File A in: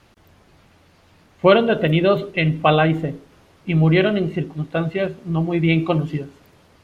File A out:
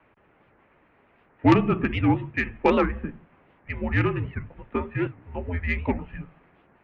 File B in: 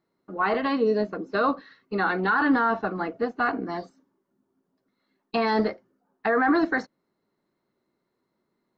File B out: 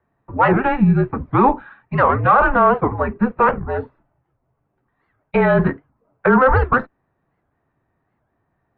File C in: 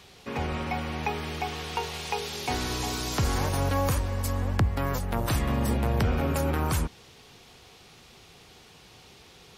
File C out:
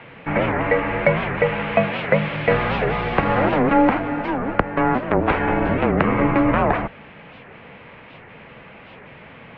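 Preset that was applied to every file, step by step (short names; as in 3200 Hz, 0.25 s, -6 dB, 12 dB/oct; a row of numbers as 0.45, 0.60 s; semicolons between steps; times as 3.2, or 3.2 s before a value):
mistuned SSB -260 Hz 360–2700 Hz; added harmonics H 3 -14 dB, 5 -22 dB, 6 -35 dB, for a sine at -2.5 dBFS; record warp 78 rpm, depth 250 cents; normalise peaks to -2 dBFS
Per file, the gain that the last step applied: -0.5, +12.5, +16.5 dB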